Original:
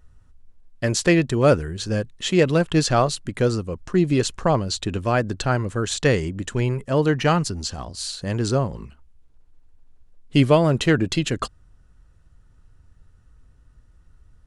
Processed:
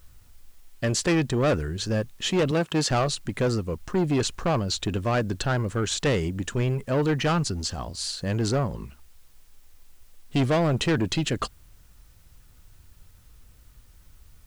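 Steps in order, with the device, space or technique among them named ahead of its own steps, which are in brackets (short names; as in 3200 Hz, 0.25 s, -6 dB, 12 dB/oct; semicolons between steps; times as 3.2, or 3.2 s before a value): compact cassette (soft clip -18 dBFS, distortion -9 dB; LPF 9900 Hz; wow and flutter; white noise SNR 36 dB); 2.51–2.91 HPF 140 Hz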